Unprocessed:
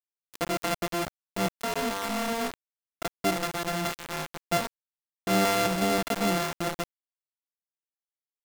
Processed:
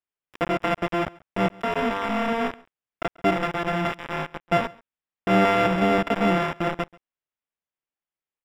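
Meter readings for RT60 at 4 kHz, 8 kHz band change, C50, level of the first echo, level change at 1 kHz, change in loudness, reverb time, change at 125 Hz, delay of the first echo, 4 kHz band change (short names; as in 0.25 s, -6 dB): none, under -10 dB, none, -24.0 dB, +5.5 dB, +4.5 dB, none, +5.5 dB, 0.137 s, -1.5 dB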